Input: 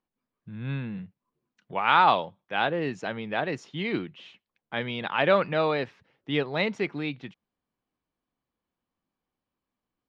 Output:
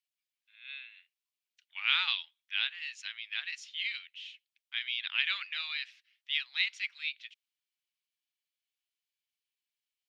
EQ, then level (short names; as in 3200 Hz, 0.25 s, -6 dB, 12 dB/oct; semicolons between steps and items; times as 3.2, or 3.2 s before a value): inverse Chebyshev high-pass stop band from 430 Hz, stop band 80 dB; high shelf 3600 Hz -7.5 dB; +7.5 dB